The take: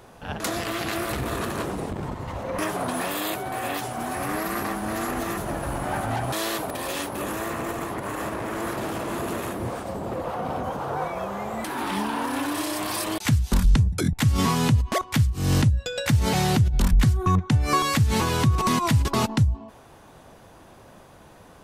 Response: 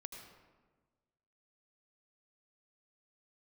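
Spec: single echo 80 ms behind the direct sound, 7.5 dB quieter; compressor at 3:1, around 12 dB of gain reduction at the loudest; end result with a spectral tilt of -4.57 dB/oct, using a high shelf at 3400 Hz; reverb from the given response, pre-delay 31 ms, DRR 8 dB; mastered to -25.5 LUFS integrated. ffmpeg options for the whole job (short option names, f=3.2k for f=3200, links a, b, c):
-filter_complex "[0:a]highshelf=f=3.4k:g=3.5,acompressor=threshold=-31dB:ratio=3,aecho=1:1:80:0.422,asplit=2[a][b];[1:a]atrim=start_sample=2205,adelay=31[c];[b][c]afir=irnorm=-1:irlink=0,volume=-4dB[d];[a][d]amix=inputs=2:normalize=0,volume=5.5dB"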